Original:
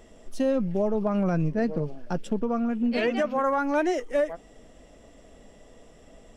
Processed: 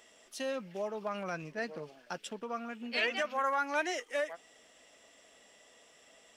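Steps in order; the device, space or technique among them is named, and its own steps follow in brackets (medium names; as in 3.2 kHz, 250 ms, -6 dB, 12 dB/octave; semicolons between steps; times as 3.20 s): filter by subtraction (in parallel: low-pass 2.6 kHz 12 dB/octave + polarity flip)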